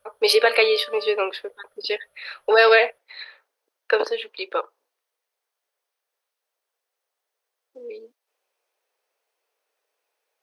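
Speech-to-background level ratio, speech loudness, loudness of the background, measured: 19.5 dB, -20.5 LUFS, -40.0 LUFS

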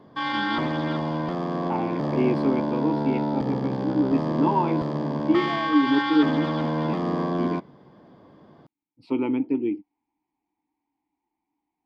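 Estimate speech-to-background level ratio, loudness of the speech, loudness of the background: 0.0 dB, -26.5 LUFS, -26.5 LUFS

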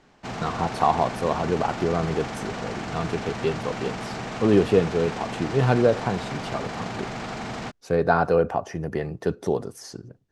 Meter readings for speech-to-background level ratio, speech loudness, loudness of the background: 8.0 dB, -25.0 LUFS, -33.0 LUFS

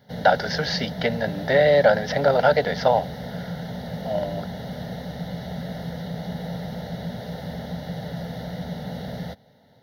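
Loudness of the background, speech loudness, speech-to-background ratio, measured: -33.0 LUFS, -21.5 LUFS, 11.5 dB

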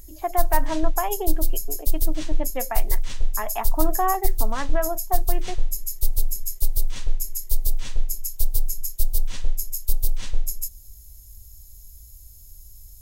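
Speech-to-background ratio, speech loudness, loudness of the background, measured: 0.0 dB, -29.0 LUFS, -29.0 LUFS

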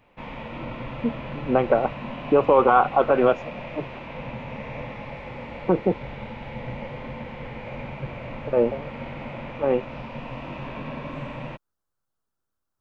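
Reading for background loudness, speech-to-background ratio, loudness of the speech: -35.5 LUFS, 13.5 dB, -22.0 LUFS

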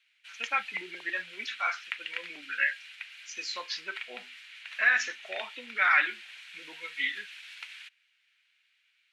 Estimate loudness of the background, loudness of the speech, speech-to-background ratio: -43.0 LUFS, -29.5 LUFS, 13.5 dB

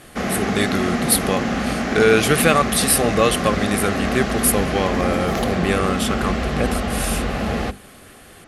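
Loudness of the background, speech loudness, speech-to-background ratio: -22.5 LUFS, -20.5 LUFS, 2.0 dB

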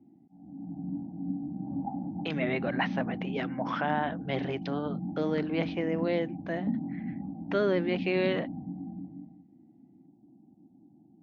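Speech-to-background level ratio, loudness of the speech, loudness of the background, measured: 4.5 dB, -32.0 LUFS, -36.5 LUFS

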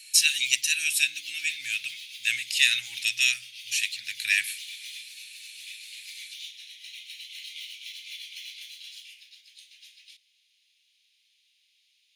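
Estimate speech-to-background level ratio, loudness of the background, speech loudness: 15.5 dB, -40.5 LUFS, -25.0 LUFS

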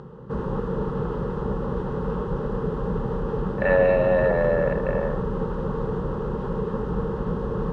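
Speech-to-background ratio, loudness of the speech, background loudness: 5.5 dB, -22.5 LUFS, -28.0 LUFS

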